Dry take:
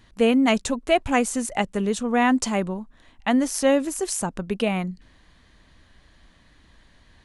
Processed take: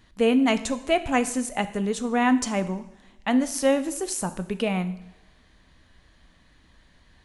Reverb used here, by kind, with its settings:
coupled-rooms reverb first 0.69 s, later 1.8 s, DRR 10.5 dB
level −2.5 dB

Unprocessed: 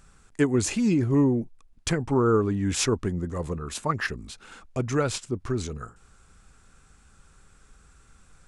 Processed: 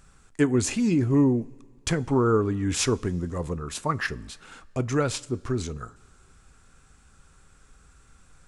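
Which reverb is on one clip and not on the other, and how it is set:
coupled-rooms reverb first 0.24 s, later 2 s, from −18 dB, DRR 15.5 dB

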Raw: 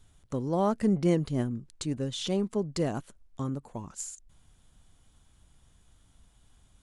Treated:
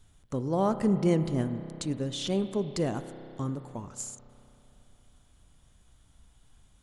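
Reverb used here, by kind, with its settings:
spring reverb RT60 3.2 s, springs 31 ms, chirp 30 ms, DRR 10 dB

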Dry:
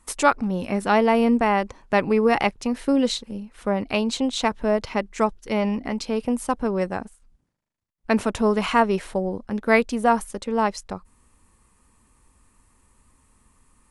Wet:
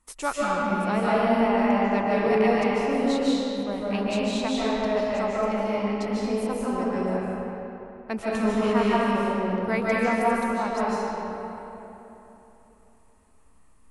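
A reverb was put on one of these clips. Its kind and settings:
comb and all-pass reverb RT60 3.4 s, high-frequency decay 0.6×, pre-delay 110 ms, DRR −7.5 dB
level −10.5 dB

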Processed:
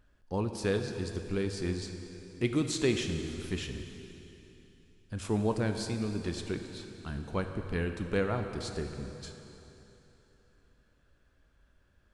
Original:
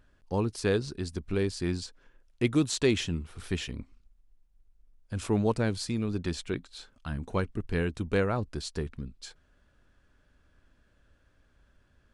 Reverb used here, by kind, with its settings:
dense smooth reverb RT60 3.4 s, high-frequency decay 0.9×, DRR 5.5 dB
level −3.5 dB

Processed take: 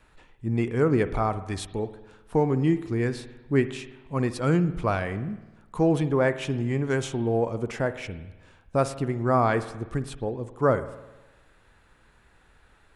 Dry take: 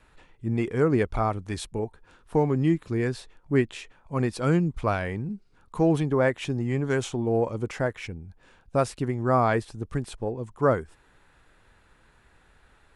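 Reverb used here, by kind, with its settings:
spring reverb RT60 1.1 s, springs 51 ms, chirp 75 ms, DRR 12.5 dB

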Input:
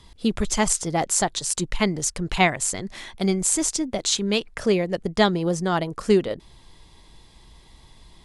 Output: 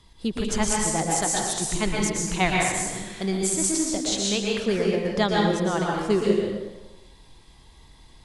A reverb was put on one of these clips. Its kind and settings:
dense smooth reverb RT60 1.1 s, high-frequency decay 0.8×, pre-delay 105 ms, DRR −2.5 dB
level −5 dB

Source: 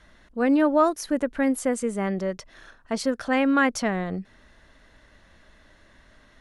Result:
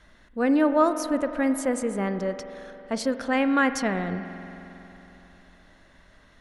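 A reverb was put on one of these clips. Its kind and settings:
spring reverb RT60 3.5 s, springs 45 ms, chirp 65 ms, DRR 9.5 dB
level −1 dB

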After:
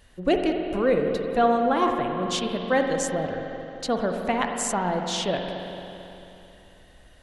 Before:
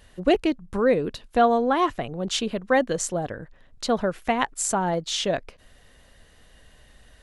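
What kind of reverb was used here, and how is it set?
spring reverb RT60 3.2 s, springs 44/55 ms, chirp 45 ms, DRR 3 dB
level −2.5 dB

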